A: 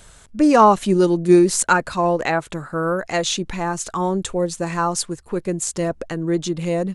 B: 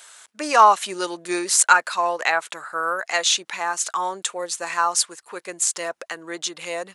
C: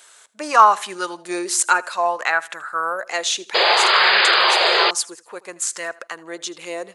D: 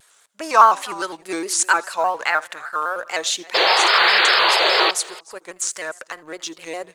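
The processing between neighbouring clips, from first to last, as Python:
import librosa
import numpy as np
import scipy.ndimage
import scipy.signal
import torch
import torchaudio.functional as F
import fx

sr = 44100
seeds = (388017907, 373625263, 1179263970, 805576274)

y1 = scipy.signal.sosfilt(scipy.signal.butter(2, 1000.0, 'highpass', fs=sr, output='sos'), x)
y1 = y1 * 10.0 ** (4.0 / 20.0)
y2 = fx.echo_feedback(y1, sr, ms=80, feedback_pct=37, wet_db=-21.0)
y2 = fx.spec_paint(y2, sr, seeds[0], shape='noise', start_s=3.54, length_s=1.37, low_hz=340.0, high_hz=5000.0, level_db=-15.0)
y2 = fx.bell_lfo(y2, sr, hz=0.6, low_hz=350.0, high_hz=1700.0, db=8)
y2 = y2 * 10.0 ** (-2.5 / 20.0)
y3 = fx.law_mismatch(y2, sr, coded='A')
y3 = y3 + 10.0 ** (-21.5 / 20.0) * np.pad(y3, (int(300 * sr / 1000.0), 0))[:len(y3)]
y3 = fx.vibrato_shape(y3, sr, shape='square', rate_hz=4.9, depth_cents=100.0)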